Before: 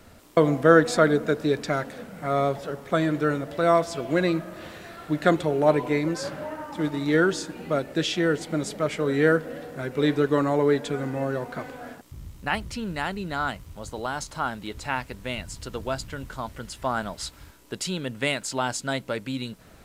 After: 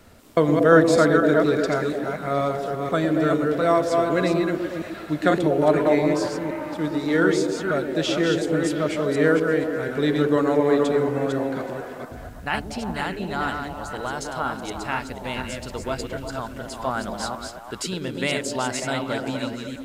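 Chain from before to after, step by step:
delay that plays each chunk backwards 241 ms, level −4.5 dB
echo through a band-pass that steps 118 ms, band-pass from 300 Hz, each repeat 0.7 octaves, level −1 dB

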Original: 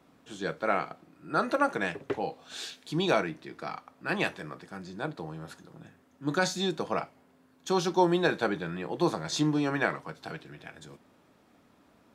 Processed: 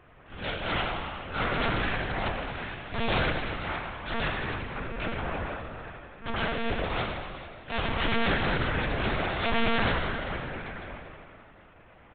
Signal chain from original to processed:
compressing power law on the bin magnitudes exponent 0.48
low-pass filter 2,500 Hz 24 dB per octave
in parallel at +3 dB: downward compressor 5 to 1, threshold −36 dBFS, peak gain reduction 16 dB
on the sum: wrap-around overflow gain 19 dB
transient designer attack −9 dB, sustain +5 dB
on a send: repeating echo 81 ms, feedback 59%, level −12.5 dB
on the sum: four-comb reverb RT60 1.9 s, combs from 27 ms, DRR 2 dB
one-pitch LPC vocoder at 8 kHz 230 Hz

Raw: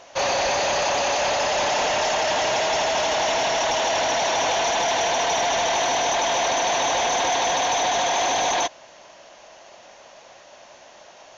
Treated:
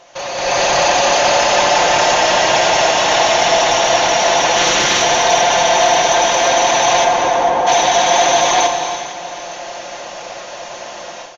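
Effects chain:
0:04.56–0:05.01: ceiling on every frequency bin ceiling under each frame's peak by 18 dB
comb filter 5.7 ms, depth 42%
brickwall limiter −19.5 dBFS, peak gain reduction 9 dB
0:07.04–0:07.66: low-pass filter 2,100 Hz → 1,000 Hz 12 dB per octave
delay that swaps between a low-pass and a high-pass 227 ms, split 1,300 Hz, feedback 66%, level −11 dB
reverb whose tail is shaped and stops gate 410 ms flat, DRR 5.5 dB
automatic gain control gain up to 15 dB

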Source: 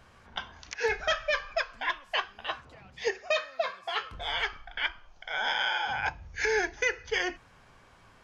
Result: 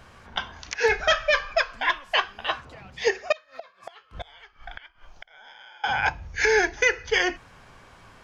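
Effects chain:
0:03.32–0:05.84: gate with flip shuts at −30 dBFS, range −26 dB
level +7 dB

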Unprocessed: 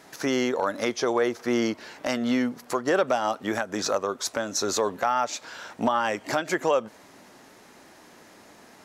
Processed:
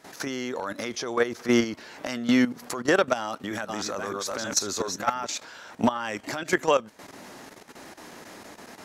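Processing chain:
0:03.20–0:05.25: delay that plays each chunk backwards 310 ms, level −4.5 dB
dynamic equaliser 620 Hz, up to −6 dB, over −35 dBFS, Q 0.74
output level in coarse steps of 13 dB
level +7.5 dB

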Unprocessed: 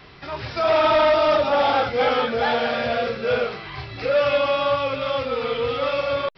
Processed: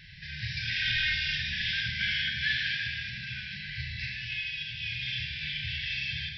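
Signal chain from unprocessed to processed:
0:02.73–0:04.83: downward compressor, threshold −23 dBFS, peak gain reduction 7.5 dB
linear-phase brick-wall band-stop 200–1,500 Hz
four-comb reverb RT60 1.1 s, combs from 26 ms, DRR 1.5 dB
level −2.5 dB

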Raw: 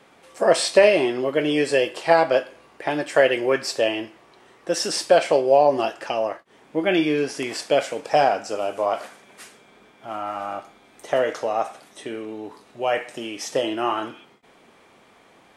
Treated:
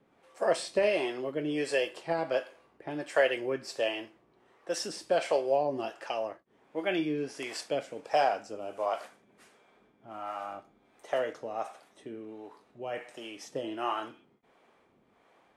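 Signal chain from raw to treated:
two-band tremolo in antiphase 1.4 Hz, depth 70%, crossover 400 Hz
one half of a high-frequency compander decoder only
level −7 dB

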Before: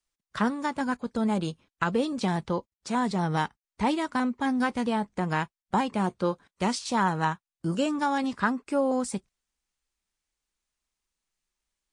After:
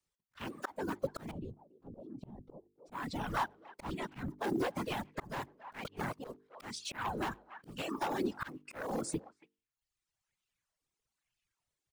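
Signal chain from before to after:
one scale factor per block 5 bits
random phases in short frames
wave folding −21 dBFS
0:03.85–0:04.30: bass and treble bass +14 dB, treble −1 dB
mains-hum notches 50/100/150/200/250/300/350/400/450 Hz
far-end echo of a speakerphone 280 ms, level −17 dB
reverb reduction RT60 0.82 s
0:01.31–0:02.92: drawn EQ curve 220 Hz 0 dB, 790 Hz −9 dB, 1,600 Hz −29 dB
volume swells 404 ms
0:05.84–0:06.24: reverse
downward compressor 3 to 1, threshold −33 dBFS, peak gain reduction 6.5 dB
auto-filter bell 1.1 Hz 350–3,000 Hz +10 dB
level −3 dB

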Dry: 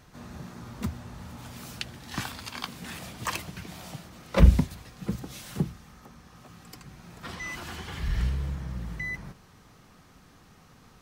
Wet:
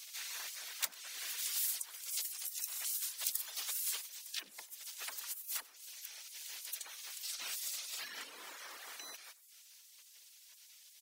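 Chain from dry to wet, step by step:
high-pass filter 42 Hz 12 dB per octave
high-shelf EQ 3,300 Hz −7 dB
downward compressor 6 to 1, threshold −32 dBFS, peak gain reduction 19.5 dB
reverb reduction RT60 0.62 s
speech leveller within 4 dB 0.5 s
gate on every frequency bin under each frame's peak −25 dB weak
spectral tilt +4.5 dB per octave
on a send: single-tap delay 96 ms −22 dB
on the sum: level +5.5 dB

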